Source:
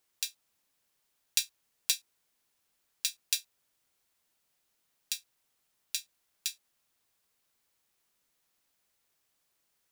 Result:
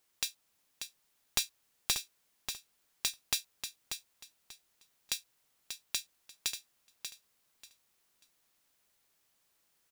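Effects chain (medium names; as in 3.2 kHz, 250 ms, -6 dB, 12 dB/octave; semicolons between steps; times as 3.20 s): one-sided wavefolder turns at -19 dBFS; in parallel at +1.5 dB: peak limiter -17.5 dBFS, peak gain reduction 10.5 dB; on the sum: feedback delay 588 ms, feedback 23%, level -8 dB; trim -5 dB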